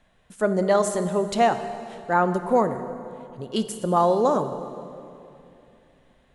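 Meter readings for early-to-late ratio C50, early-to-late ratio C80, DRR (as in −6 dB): 10.0 dB, 11.0 dB, 9.5 dB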